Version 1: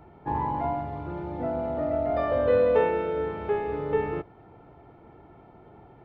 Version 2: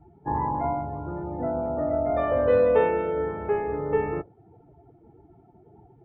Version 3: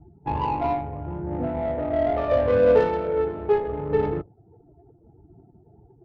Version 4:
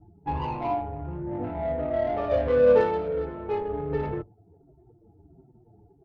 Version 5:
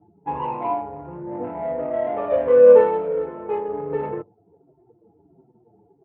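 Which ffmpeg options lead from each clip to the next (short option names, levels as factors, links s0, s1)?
-af "afftdn=nr=20:nf=-43,volume=1.19"
-af "aphaser=in_gain=1:out_gain=1:delay=3.1:decay=0.36:speed=0.74:type=triangular,adynamicsmooth=sensitivity=1:basefreq=690,volume=1.19"
-filter_complex "[0:a]asplit=2[s0][s1];[s1]adelay=6.4,afreqshift=-1.4[s2];[s0][s2]amix=inputs=2:normalize=1"
-af "highpass=170,equalizer=f=200:t=q:w=4:g=3,equalizer=f=490:t=q:w=4:g=8,equalizer=f=990:t=q:w=4:g=8,lowpass=f=2800:w=0.5412,lowpass=f=2800:w=1.3066"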